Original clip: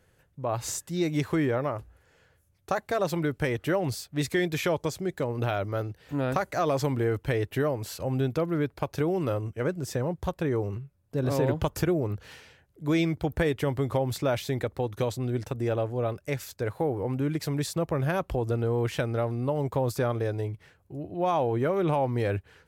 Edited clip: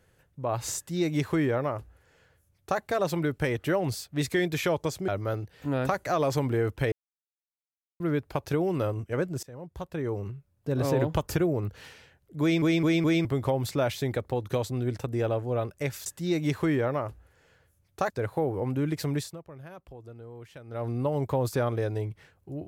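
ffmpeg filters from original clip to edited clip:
-filter_complex "[0:a]asplit=13[a][b][c][d][e][f][g][h][i][j][k][l][m];[a]atrim=end=5.082[n];[b]atrim=start=5.548:end=7.39,asetpts=PTS-STARTPTS,afade=t=out:st=1.838:d=0.004:c=hsin[o];[c]atrim=start=7.39:end=8.47,asetpts=PTS-STARTPTS,volume=0[p];[d]atrim=start=8.47:end=9.9,asetpts=PTS-STARTPTS,afade=t=in:d=0.004:c=hsin,afade=t=out:st=1.426:d=0.004:c=hsin:silence=0.0707946[q];[e]atrim=start=9.9:end=13.092,asetpts=PTS-STARTPTS,afade=t=in:d=1.44:c=qsin:silence=0.0707946[r];[f]atrim=start=12.878:end=13.092[s];[g]atrim=start=12.878:end=13.092[t];[h]atrim=start=12.878:end=13.092[u];[i]atrim=start=13.718:end=16.532[v];[j]atrim=start=0.758:end=2.802[w];[k]atrim=start=16.528:end=17.87,asetpts=PTS-STARTPTS,afade=t=out:st=1.072:d=0.27:c=qua:silence=0.125893[x];[l]atrim=start=17.87:end=19.04,asetpts=PTS-STARTPTS,volume=-18dB[y];[m]atrim=start=19.04,asetpts=PTS-STARTPTS,afade=t=in:d=0.27:c=qua:silence=0.125893[z];[o][p][q][r]concat=n=4:v=0:a=1[aa];[n][aa]acrossfade=d=0.004:c1=hsin:c2=hsin[ab];[ab][s]acrossfade=d=0.004:c1=hsin:c2=hsin[ac];[ac][t]acrossfade=d=0.004:c1=hsin:c2=hsin[ad];[ad][u]acrossfade=d=0.004:c1=hsin:c2=hsin[ae];[ae][v]acrossfade=d=0.004:c1=hsin:c2=hsin[af];[af][w]acrossfade=d=0.004:c1=hsin:c2=hsin[ag];[x][y][z]concat=n=3:v=0:a=1[ah];[ag][ah]acrossfade=d=0.004:c1=hsin:c2=hsin"

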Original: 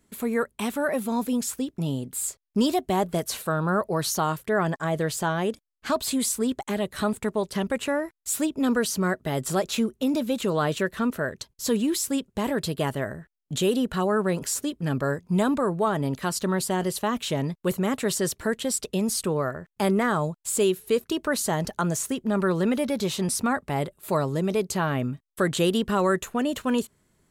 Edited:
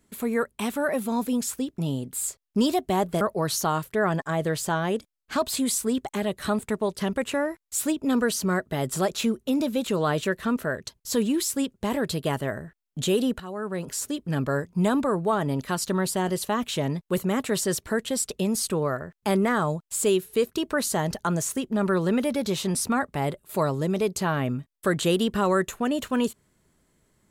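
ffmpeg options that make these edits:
-filter_complex "[0:a]asplit=3[a][b][c];[a]atrim=end=3.212[d];[b]atrim=start=3.748:end=13.94,asetpts=PTS-STARTPTS,afade=t=out:st=10.188:d=0.004:c=hsin:silence=0.16788[e];[c]atrim=start=13.94,asetpts=PTS-STARTPTS,afade=t=in:d=0.86:silence=0.16788[f];[e][f]concat=n=2:v=0:a=1[g];[d][g]acrossfade=d=0.004:c1=hsin:c2=hsin"

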